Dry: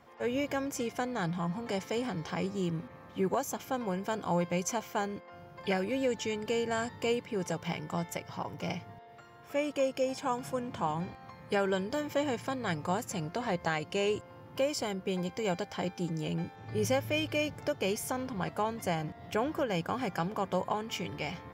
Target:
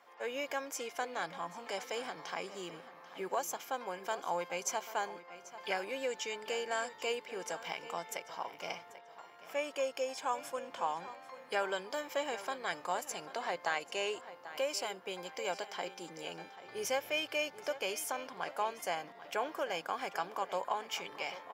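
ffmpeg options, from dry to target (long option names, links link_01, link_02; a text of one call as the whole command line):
ffmpeg -i in.wav -filter_complex "[0:a]highpass=590,asplit=2[link_01][link_02];[link_02]adelay=789,lowpass=frequency=4500:poles=1,volume=-14dB,asplit=2[link_03][link_04];[link_04]adelay=789,lowpass=frequency=4500:poles=1,volume=0.35,asplit=2[link_05][link_06];[link_06]adelay=789,lowpass=frequency=4500:poles=1,volume=0.35[link_07];[link_01][link_03][link_05][link_07]amix=inputs=4:normalize=0,volume=-1dB" out.wav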